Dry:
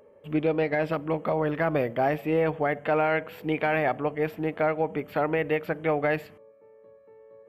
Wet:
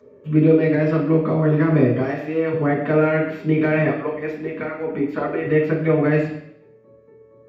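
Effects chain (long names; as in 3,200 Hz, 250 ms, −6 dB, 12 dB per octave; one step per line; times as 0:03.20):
0:02.00–0:02.52: high-pass filter 860 Hz 6 dB per octave
0:03.87–0:05.45: harmonic and percussive parts rebalanced harmonic −17 dB
convolution reverb RT60 0.70 s, pre-delay 3 ms, DRR −5.5 dB
level −6 dB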